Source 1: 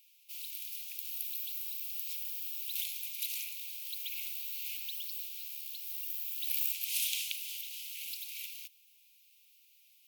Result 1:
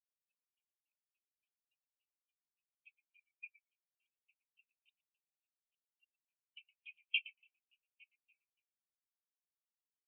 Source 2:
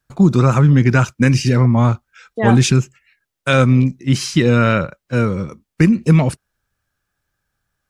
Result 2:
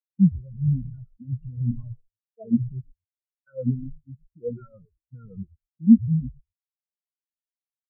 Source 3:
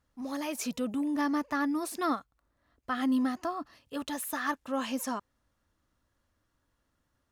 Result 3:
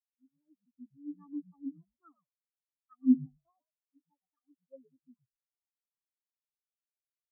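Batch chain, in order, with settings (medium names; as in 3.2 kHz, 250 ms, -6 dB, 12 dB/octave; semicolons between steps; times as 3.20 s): treble shelf 3.3 kHz +4 dB; peak limiter -11 dBFS; LFO low-pass saw down 3.5 Hz 200–3000 Hz; frequency-shifting echo 116 ms, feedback 33%, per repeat -110 Hz, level -5 dB; spectral contrast expander 4:1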